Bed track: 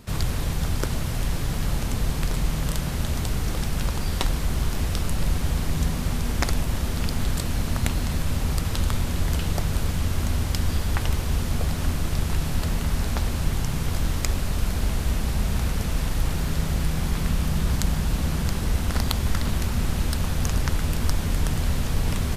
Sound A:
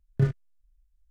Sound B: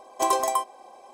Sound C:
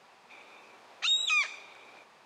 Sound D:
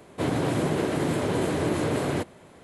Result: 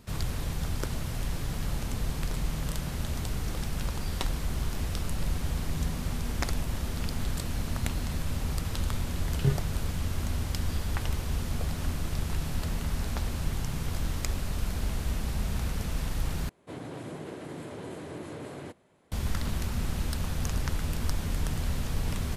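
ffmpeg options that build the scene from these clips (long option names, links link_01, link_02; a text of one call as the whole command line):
ffmpeg -i bed.wav -i cue0.wav -i cue1.wav -i cue2.wav -i cue3.wav -filter_complex "[0:a]volume=-6.5dB,asplit=2[link_01][link_02];[link_01]atrim=end=16.494[link_03];[4:a]atrim=end=2.63,asetpts=PTS-STARTPTS,volume=-14.5dB[link_04];[link_02]atrim=start=19.116[link_05];[1:a]atrim=end=1.1,asetpts=PTS-STARTPTS,volume=-3dB,afade=type=in:duration=0.004:curve=hsin,afade=type=out:start_time=1.096:duration=0.004:curve=hsin,adelay=9250[link_06];[link_03][link_04]acrossfade=duration=0.004:curve1=hsin:curve2=hsin[link_07];[link_07][link_05]acrossfade=duration=0.004:curve1=hsin:curve2=hsin[link_08];[link_08][link_06]amix=inputs=2:normalize=0" out.wav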